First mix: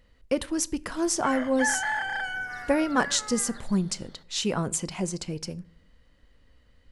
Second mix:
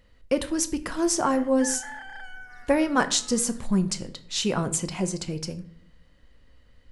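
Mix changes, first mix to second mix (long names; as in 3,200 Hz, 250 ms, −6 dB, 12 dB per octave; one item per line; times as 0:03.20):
speech: send +10.0 dB
background −11.0 dB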